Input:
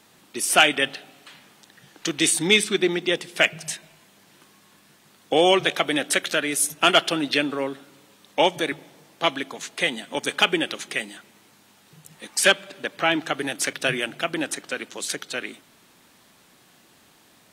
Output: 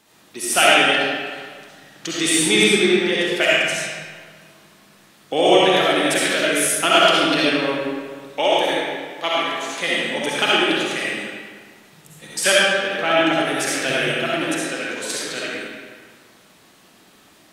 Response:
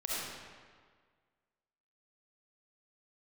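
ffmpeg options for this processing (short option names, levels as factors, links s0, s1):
-filter_complex "[0:a]asettb=1/sr,asplit=3[s0][s1][s2];[s0]atrim=end=8.404[s3];[s1]atrim=start=8.4:end=9.78,asetpts=PTS-STARTPTS,afade=t=in:d=0.004:c=qsin,afade=t=out:st=1.376:d=0.004:c=qsin,lowshelf=f=240:g=-10[s4];[s2]atrim=start=9.776[s5];[s3][s4]acrossfade=d=0.004:c1=hsin:c2=qsin[s6];[s6][s5]acrossfade=d=0.004:c1=qsin:c2=hsin[s7];[1:a]atrim=start_sample=2205[s8];[s7][s8]afir=irnorm=-1:irlink=0"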